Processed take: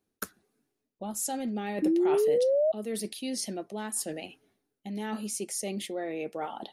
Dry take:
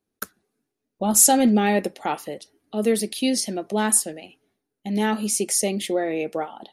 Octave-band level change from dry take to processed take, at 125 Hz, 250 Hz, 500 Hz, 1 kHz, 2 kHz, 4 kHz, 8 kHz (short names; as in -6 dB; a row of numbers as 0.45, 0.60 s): -11.0, -9.0, -3.0, -12.0, -11.5, -10.5, -14.5 dB